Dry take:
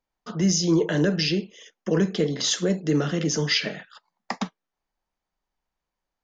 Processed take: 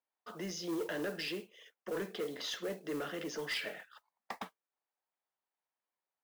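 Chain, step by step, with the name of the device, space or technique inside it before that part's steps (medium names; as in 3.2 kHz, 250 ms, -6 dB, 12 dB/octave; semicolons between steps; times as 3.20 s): carbon microphone (band-pass 430–3200 Hz; saturation -23.5 dBFS, distortion -14 dB; modulation noise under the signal 19 dB); trim -7.5 dB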